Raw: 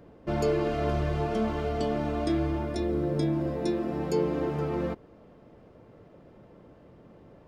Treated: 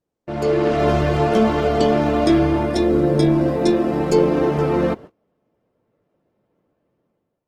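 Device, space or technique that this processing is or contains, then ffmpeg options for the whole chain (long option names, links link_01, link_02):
video call: -af "highpass=frequency=130:poles=1,dynaudnorm=framelen=140:gausssize=7:maxgain=13dB,agate=range=-28dB:threshold=-35dB:ratio=16:detection=peak" -ar 48000 -c:a libopus -b:a 16k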